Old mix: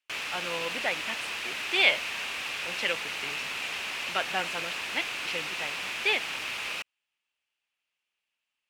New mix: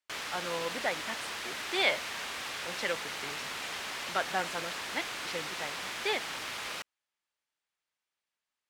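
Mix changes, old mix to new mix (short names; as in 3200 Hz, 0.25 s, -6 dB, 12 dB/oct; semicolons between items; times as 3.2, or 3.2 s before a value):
speech: add bell 3000 Hz -4 dB 0.41 oct; master: add bell 2600 Hz -10.5 dB 0.46 oct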